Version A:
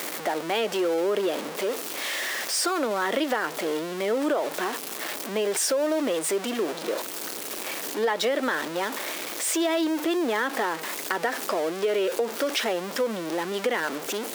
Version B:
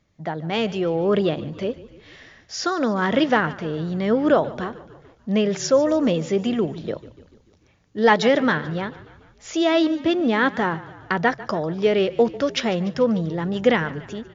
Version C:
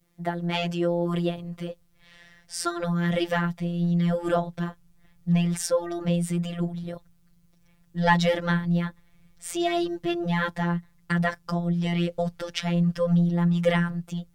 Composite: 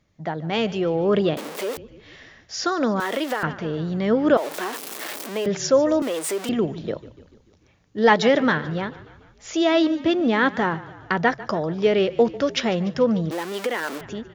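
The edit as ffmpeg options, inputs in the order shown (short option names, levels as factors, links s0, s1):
-filter_complex "[0:a]asplit=5[s0][s1][s2][s3][s4];[1:a]asplit=6[s5][s6][s7][s8][s9][s10];[s5]atrim=end=1.372[s11];[s0]atrim=start=1.368:end=1.772[s12];[s6]atrim=start=1.768:end=3.002[s13];[s1]atrim=start=2.998:end=3.432[s14];[s7]atrim=start=3.428:end=4.372[s15];[s2]atrim=start=4.368:end=5.462[s16];[s8]atrim=start=5.458:end=6.022[s17];[s3]atrim=start=6.018:end=6.492[s18];[s9]atrim=start=6.488:end=13.312[s19];[s4]atrim=start=13.308:end=14.012[s20];[s10]atrim=start=14.008[s21];[s11][s12]acrossfade=d=0.004:c1=hsin:c2=hsin[s22];[s22][s13]acrossfade=d=0.004:c1=hsin:c2=hsin[s23];[s23][s14]acrossfade=d=0.004:c1=hsin:c2=hsin[s24];[s24][s15]acrossfade=d=0.004:c1=hsin:c2=hsin[s25];[s25][s16]acrossfade=d=0.004:c1=hsin:c2=hsin[s26];[s26][s17]acrossfade=d=0.004:c1=hsin:c2=hsin[s27];[s27][s18]acrossfade=d=0.004:c1=hsin:c2=hsin[s28];[s28][s19]acrossfade=d=0.004:c1=hsin:c2=hsin[s29];[s29][s20]acrossfade=d=0.004:c1=hsin:c2=hsin[s30];[s30][s21]acrossfade=d=0.004:c1=hsin:c2=hsin"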